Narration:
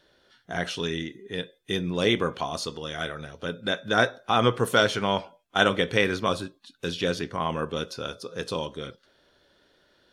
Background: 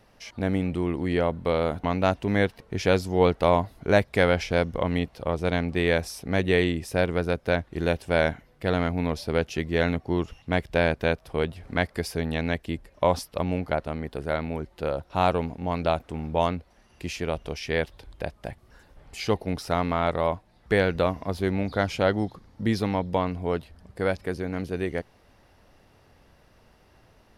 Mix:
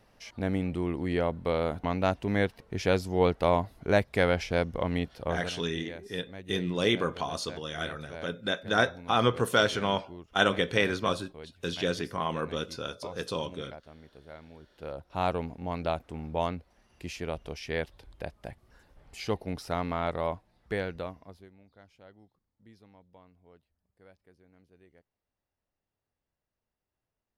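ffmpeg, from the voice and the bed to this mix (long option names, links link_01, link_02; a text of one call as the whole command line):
ffmpeg -i stem1.wav -i stem2.wav -filter_complex "[0:a]adelay=4800,volume=-3dB[link_01];[1:a]volume=10dB,afade=type=out:start_time=5.29:duration=0.24:silence=0.158489,afade=type=in:start_time=14.59:duration=0.69:silence=0.199526,afade=type=out:start_time=20.31:duration=1.19:silence=0.0530884[link_02];[link_01][link_02]amix=inputs=2:normalize=0" out.wav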